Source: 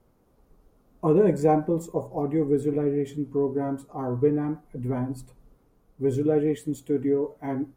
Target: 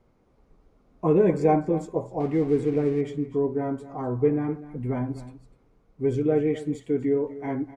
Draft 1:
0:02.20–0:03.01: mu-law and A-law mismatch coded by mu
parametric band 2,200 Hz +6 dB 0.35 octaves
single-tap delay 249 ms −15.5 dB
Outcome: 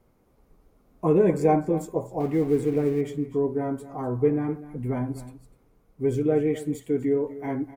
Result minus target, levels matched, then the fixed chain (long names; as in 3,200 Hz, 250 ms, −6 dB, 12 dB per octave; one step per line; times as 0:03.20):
8,000 Hz band +6.5 dB
0:02.20–0:03.01: mu-law and A-law mismatch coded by mu
low-pass filter 5,900 Hz 12 dB per octave
parametric band 2,200 Hz +6 dB 0.35 octaves
single-tap delay 249 ms −15.5 dB